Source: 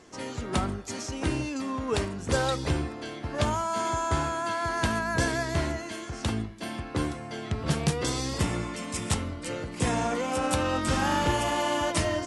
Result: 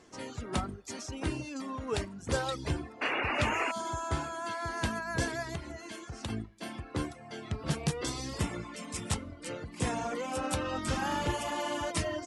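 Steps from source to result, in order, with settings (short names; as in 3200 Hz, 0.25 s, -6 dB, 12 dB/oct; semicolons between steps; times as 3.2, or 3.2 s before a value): 3.01–3.72 painted sound noise 240–2900 Hz -26 dBFS; 5.55–6.3 compressor 5:1, threshold -30 dBFS, peak gain reduction 8 dB; reverb removal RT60 0.72 s; gain -4.5 dB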